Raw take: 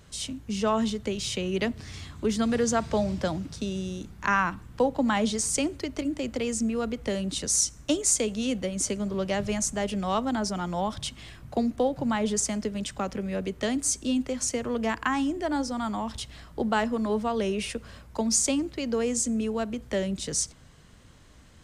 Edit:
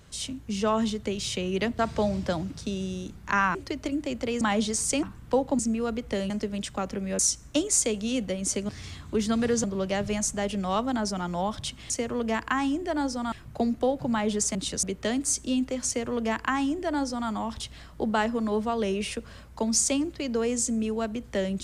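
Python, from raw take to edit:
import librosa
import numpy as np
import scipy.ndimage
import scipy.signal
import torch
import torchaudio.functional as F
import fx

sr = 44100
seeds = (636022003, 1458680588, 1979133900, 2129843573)

y = fx.edit(x, sr, fx.move(start_s=1.79, length_s=0.95, to_s=9.03),
    fx.swap(start_s=4.5, length_s=0.56, other_s=5.68, other_length_s=0.86),
    fx.swap(start_s=7.25, length_s=0.28, other_s=12.52, other_length_s=0.89),
    fx.duplicate(start_s=14.45, length_s=1.42, to_s=11.29), tone=tone)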